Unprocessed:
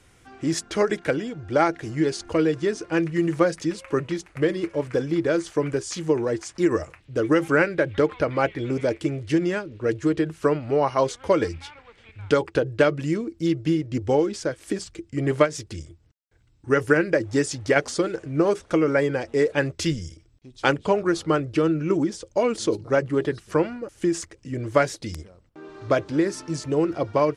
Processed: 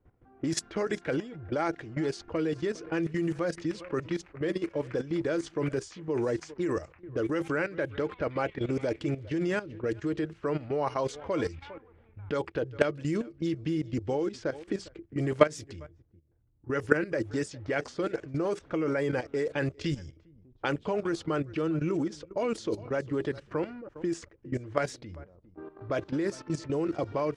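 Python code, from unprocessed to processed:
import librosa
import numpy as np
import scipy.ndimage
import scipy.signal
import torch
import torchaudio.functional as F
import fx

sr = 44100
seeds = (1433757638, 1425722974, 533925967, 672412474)

y = x + 10.0 ** (-23.0 / 20.0) * np.pad(x, (int(404 * sr / 1000.0), 0))[:len(x)]
y = fx.level_steps(y, sr, step_db=14)
y = fx.env_lowpass(y, sr, base_hz=760.0, full_db=-25.0)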